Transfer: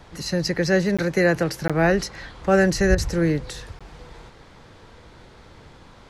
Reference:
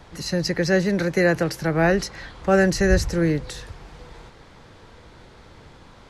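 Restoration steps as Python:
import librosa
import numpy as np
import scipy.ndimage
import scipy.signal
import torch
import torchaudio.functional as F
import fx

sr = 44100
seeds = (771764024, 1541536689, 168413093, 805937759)

y = fx.fix_interpolate(x, sr, at_s=(0.97, 1.68, 3.79), length_ms=16.0)
y = fx.fix_interpolate(y, sr, at_s=(2.95,), length_ms=29.0)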